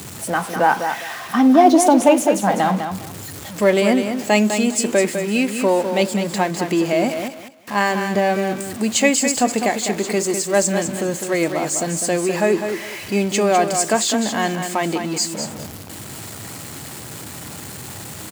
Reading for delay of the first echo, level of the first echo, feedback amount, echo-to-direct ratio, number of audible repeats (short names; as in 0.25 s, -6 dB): 0.203 s, -7.5 dB, 21%, -7.5 dB, 3